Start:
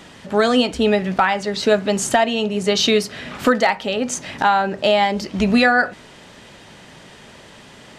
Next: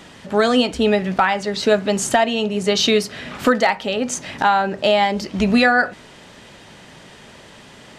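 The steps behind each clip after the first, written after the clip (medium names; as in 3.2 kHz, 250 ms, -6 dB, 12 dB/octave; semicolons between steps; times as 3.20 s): no audible change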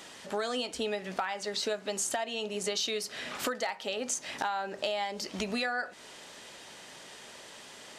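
tone controls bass -13 dB, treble +7 dB; compression 4:1, threshold -25 dBFS, peak gain reduction 12 dB; trim -6 dB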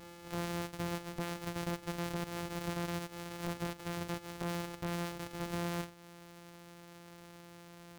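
sorted samples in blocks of 256 samples; reverse echo 310 ms -17.5 dB; wavefolder -24.5 dBFS; trim -4.5 dB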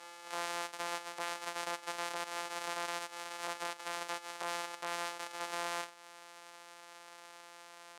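Chebyshev band-pass 790–9500 Hz, order 2; trim +5 dB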